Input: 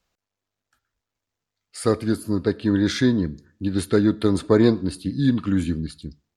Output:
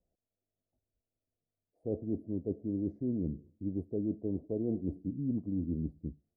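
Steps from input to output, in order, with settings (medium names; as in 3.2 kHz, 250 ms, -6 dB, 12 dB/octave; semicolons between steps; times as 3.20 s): reverse; compression 6:1, threshold -27 dBFS, peak gain reduction 15 dB; reverse; elliptic low-pass 680 Hz, stop band 50 dB; trim -3.5 dB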